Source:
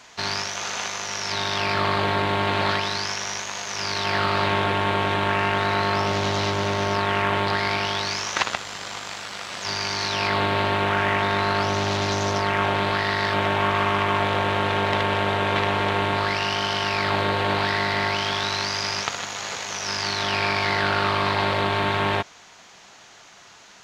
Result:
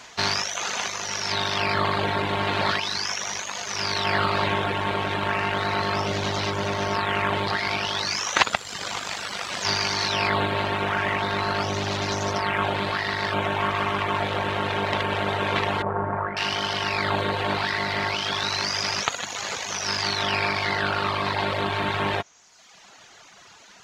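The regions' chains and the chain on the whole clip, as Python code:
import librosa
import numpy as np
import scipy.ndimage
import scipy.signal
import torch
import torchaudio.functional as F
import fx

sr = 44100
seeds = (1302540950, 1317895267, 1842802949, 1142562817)

y = fx.chain(x, sr, fx.lowpass(hz=1500.0, slope=24),
    fx.hum_notches(base_hz=60, count=9), at=(15.82, 16.37))
y = fx.dereverb_blind(y, sr, rt60_s=1.0)
y = fx.rider(y, sr, range_db=10, speed_s=2.0)
y = y * 10.0 ** (1.0 / 20.0)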